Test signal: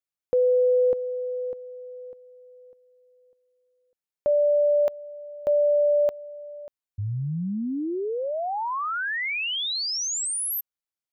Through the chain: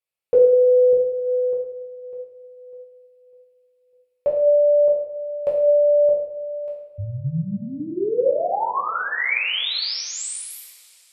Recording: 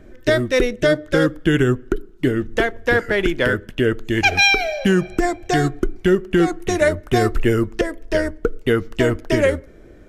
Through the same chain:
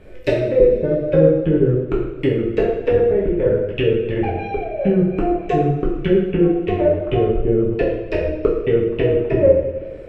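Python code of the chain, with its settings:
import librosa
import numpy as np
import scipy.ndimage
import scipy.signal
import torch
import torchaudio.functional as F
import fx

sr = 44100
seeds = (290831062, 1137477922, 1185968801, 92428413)

y = fx.graphic_eq_31(x, sr, hz=(250, 500, 1600, 2500, 6300), db=(-10, 9, -4, 8, -9))
y = fx.env_lowpass_down(y, sr, base_hz=450.0, full_db=-14.5)
y = fx.rev_double_slope(y, sr, seeds[0], early_s=0.7, late_s=3.0, knee_db=-18, drr_db=-5.0)
y = y * librosa.db_to_amplitude(-2.0)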